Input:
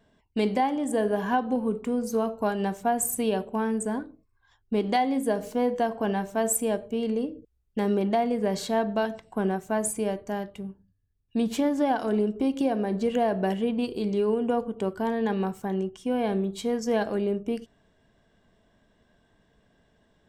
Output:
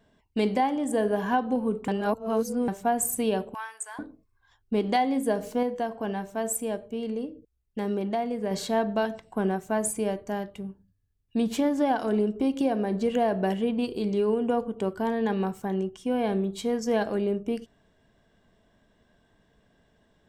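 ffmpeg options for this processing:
-filter_complex "[0:a]asettb=1/sr,asplit=3[s0][s1][s2];[s0]atrim=end=3.544[s3];[s1]atrim=start=3.54:end=3.99,asetpts=PTS-STARTPTS,afade=t=in:d=0.004:c=qsin,afade=t=out:st=0.446:d=0.004:c=qsin,highpass=f=990:w=0.5412,highpass=f=990:w=1.3066[s4];[s2]atrim=start=3.986[s5];[s3][s4]acrossfade=d=0.004:c1=hsin:c2=qsin[s6];[s6][s5]acrossfade=d=0.004:c1=qsin:c2=hsin,asplit=5[s7][s8][s9][s10][s11];[s7]atrim=end=1.882[s12];[s8]atrim=start=1.878:end=2.682,asetpts=PTS-STARTPTS,areverse[s13];[s9]atrim=start=2.678:end=5.632[s14];[s10]atrim=start=5.628:end=8.512,asetpts=PTS-STARTPTS,volume=0.631[s15];[s11]atrim=start=8.508[s16];[s12][s13]acrossfade=d=0.004:c1=hsin:c2=hsin[s17];[s17][s14]acrossfade=d=0.004:c1=hsin:c2=hsin[s18];[s18][s15]acrossfade=d=0.004:c1=hsin:c2=hsin[s19];[s19][s16]acrossfade=d=0.004:c1=hsin:c2=hsin"

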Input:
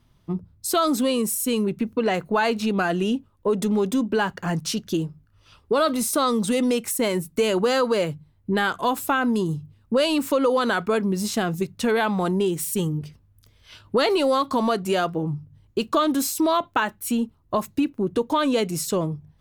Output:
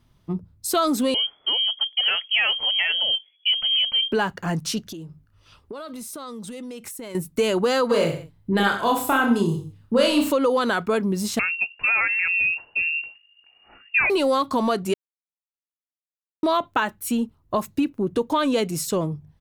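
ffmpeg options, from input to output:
-filter_complex "[0:a]asettb=1/sr,asplit=3[s0][s1][s2];[s0]atrim=end=1.144[s3];[s1]atrim=start=1.14:end=4.12,asetpts=PTS-STARTPTS,afade=t=in:d=0.004:c=qsin,afade=t=out:st=2.976:d=0.004:c=qsin,lowpass=f=2900:t=q:w=0.5098,lowpass=f=2900:t=q:w=0.6013,lowpass=f=2900:t=q:w=0.9,lowpass=f=2900:t=q:w=2.563,afreqshift=-3400[s4];[s2]atrim=start=4.116[s5];[s3][s4]acrossfade=d=0.004:c1=hsin:c2=qsin[s6];[s6][s5]acrossfade=d=0.004:c1=qsin:c2=hsin,asettb=1/sr,asplit=3[s7][s8][s9];[s7]atrim=end=4.804[s10];[s8]atrim=start=4.8:end=7.15,asetpts=PTS-STARTPTS,afade=t=in:d=0.004:c=qsin,afade=t=out:st=2.346:d=0.004:c=qsin,acompressor=threshold=0.0224:ratio=8:attack=3.2:release=140:knee=1:detection=peak[s11];[s9]atrim=start=7.146[s12];[s10][s11]acrossfade=d=0.004:c1=hsin:c2=qsin[s13];[s13][s12]acrossfade=d=0.004:c1=qsin:c2=hsin,asplit=3[s14][s15][s16];[s14]afade=t=out:st=7.89:d=0.02[s17];[s15]aecho=1:1:30|63|99.3|139.2|183.2:0.631|0.398|0.251|0.158|0.1,afade=t=in:st=7.89:d=0.02,afade=t=out:st=10.31:d=0.02[s18];[s16]afade=t=in:st=10.31:d=0.02[s19];[s17][s18][s19]amix=inputs=3:normalize=0,asettb=1/sr,asplit=3[s20][s21][s22];[s20]atrim=end=11.394[s23];[s21]atrim=start=11.39:end=14.1,asetpts=PTS-STARTPTS,afade=t=in:d=0.004:c=qsin,afade=t=out:st=2.706:d=0.004:c=qsin,lowpass=f=2500:t=q:w=0.5098,lowpass=f=2500:t=q:w=0.6013,lowpass=f=2500:t=q:w=0.9,lowpass=f=2500:t=q:w=2.563,afreqshift=-2900[s24];[s22]atrim=start=14.096[s25];[s23][s24]acrossfade=d=0.004:c1=hsin:c2=qsin[s26];[s26][s25]acrossfade=d=0.004:c1=qsin:c2=hsin,asplit=3[s27][s28][s29];[s27]atrim=end=14.94,asetpts=PTS-STARTPTS,afade=t=out:st=14.936:d=0.004:c=hsin[s30];[s28]atrim=start=14.94:end=16.43,asetpts=PTS-STARTPTS,volume=0[s31];[s29]atrim=start=16.43,asetpts=PTS-STARTPTS,afade=t=in:d=0.004:c=hsin[s32];[s30][s31][s32]concat=n=3:v=0:a=1"

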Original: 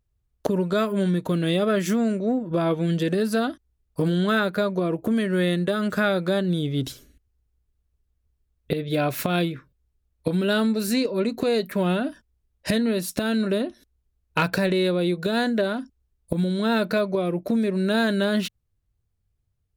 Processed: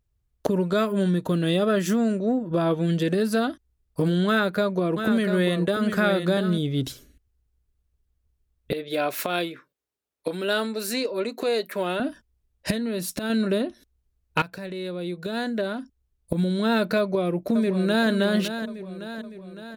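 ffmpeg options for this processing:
-filter_complex "[0:a]asettb=1/sr,asplit=3[s0][s1][s2];[s0]atrim=end=0.924[s3];[s1]atrim=start=0.92:end=2.89,asetpts=PTS-STARTPTS,afade=t=in:d=0.004:c=qsin,afade=t=out:st=1.966:d=0.004:c=qsin,bandreject=f=2200:w=8.7[s4];[s2]atrim=start=2.886[s5];[s3][s4]acrossfade=d=0.004:c1=hsin:c2=qsin[s6];[s6][s5]acrossfade=d=0.004:c1=qsin:c2=hsin,asettb=1/sr,asplit=3[s7][s8][s9];[s7]atrim=end=4.274[s10];[s8]atrim=start=4.27:end=6.58,asetpts=PTS-STARTPTS,afade=t=in:d=0.004:c=qsin,afade=t=out:st=2.306:d=0.004:c=qsin,aecho=1:1:693:0.422,atrim=end_sample=101871[s11];[s9]atrim=start=6.576[s12];[s10][s11]acrossfade=d=0.004:c1=hsin:c2=qsin[s13];[s13][s12]acrossfade=d=0.004:c1=qsin:c2=hsin,asettb=1/sr,asplit=3[s14][s15][s16];[s14]atrim=end=8.724[s17];[s15]atrim=start=8.72:end=12,asetpts=PTS-STARTPTS,afade=t=in:d=0.004:c=qsin,afade=t=out:st=3.276:d=0.004:c=qsin,highpass=370[s18];[s16]atrim=start=11.996[s19];[s17][s18]acrossfade=d=0.004:c1=hsin:c2=qsin[s20];[s20][s19]acrossfade=d=0.004:c1=qsin:c2=hsin,asettb=1/sr,asplit=3[s21][s22][s23];[s21]atrim=end=12.714[s24];[s22]atrim=start=12.71:end=13.3,asetpts=PTS-STARTPTS,afade=t=in:d=0.004:c=qsin,afade=t=out:st=0.586:d=0.004:c=qsin,acompressor=threshold=0.0631:ratio=6:attack=3.2:release=140:knee=1:detection=peak[s25];[s23]atrim=start=13.296[s26];[s24][s25]acrossfade=d=0.004:c1=hsin:c2=qsin[s27];[s27][s26]acrossfade=d=0.004:c1=qsin:c2=hsin,asplit=2[s28][s29];[s29]afade=t=in:st=16.99:d=0.01,afade=t=out:st=18.09:d=0.01,aecho=0:1:560|1120|1680|2240|2800|3360|3920:0.334965|0.200979|0.120588|0.0723525|0.0434115|0.0260469|0.0156281[s30];[s28][s30]amix=inputs=2:normalize=0,asplit=2[s31][s32];[s31]atrim=end=14.42,asetpts=PTS-STARTPTS,afade=t=out:st=14.416:d=0.004:c=hsin:silence=0.133352[s33];[s32]atrim=start=14.42,asetpts=PTS-STARTPTS,afade=t=in:d=2.04:silence=0.133352[s34];[s33][s34]concat=n=2:v=0:a=1"

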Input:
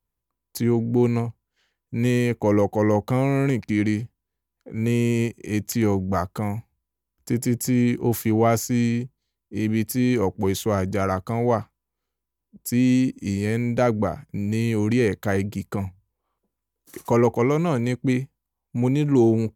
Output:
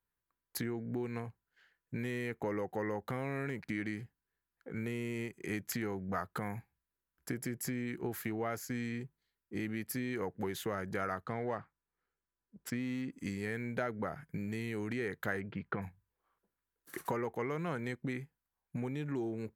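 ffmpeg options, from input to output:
-filter_complex "[0:a]asettb=1/sr,asplit=3[s0][s1][s2];[s0]atrim=end=11.244[s3];[s1]atrim=start=11.24:end=13.11,asetpts=PTS-STARTPTS,afade=t=in:d=0.004:c=qsin,afade=t=out:st=1.866:d=0.004:c=qsin,adynamicsmooth=sensitivity=5.5:basefreq=3400[s4];[s2]atrim=start=13.106[s5];[s3][s4]acrossfade=d=0.004:c1=hsin:c2=qsin[s6];[s6][s5]acrossfade=d=0.004:c1=qsin:c2=hsin,asplit=3[s7][s8][s9];[s7]afade=t=out:st=15.39:d=0.02[s10];[s8]lowpass=f=3200:w=0.5412,lowpass=f=3200:w=1.3066,afade=t=in:st=15.39:d=0.02,afade=t=out:st=15.81:d=0.02[s11];[s9]afade=t=in:st=15.81:d=0.02[s12];[s10][s11][s12]amix=inputs=3:normalize=0,equalizer=f=160:t=o:w=0.67:g=5,equalizer=f=400:t=o:w=0.67:g=3,equalizer=f=1600:t=o:w=0.67:g=11,equalizer=f=6300:t=o:w=0.67:g=-6,acompressor=threshold=0.0631:ratio=10,lowshelf=f=370:g=-7.5,volume=0.562"

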